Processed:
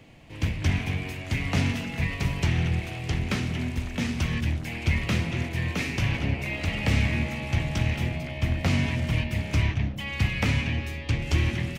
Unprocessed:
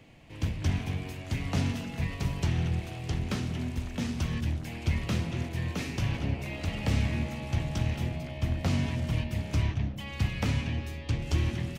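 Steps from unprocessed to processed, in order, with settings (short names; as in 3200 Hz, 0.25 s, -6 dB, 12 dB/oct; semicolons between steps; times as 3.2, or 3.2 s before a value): dynamic EQ 2200 Hz, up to +7 dB, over -55 dBFS, Q 1.7; gain +3.5 dB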